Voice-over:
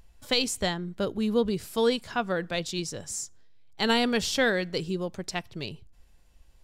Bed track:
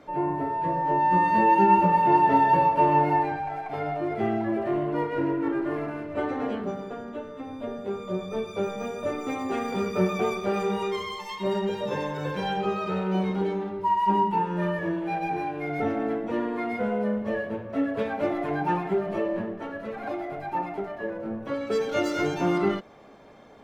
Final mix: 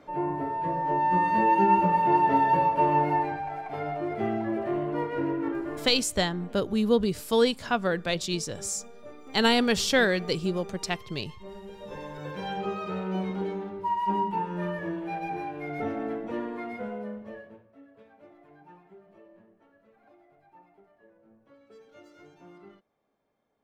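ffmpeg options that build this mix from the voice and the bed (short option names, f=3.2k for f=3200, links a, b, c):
-filter_complex "[0:a]adelay=5550,volume=2dB[a];[1:a]volume=10dB,afade=t=out:st=5.41:d=0.74:silence=0.188365,afade=t=in:st=11.64:d=0.95:silence=0.237137,afade=t=out:st=16.32:d=1.42:silence=0.0749894[b];[a][b]amix=inputs=2:normalize=0"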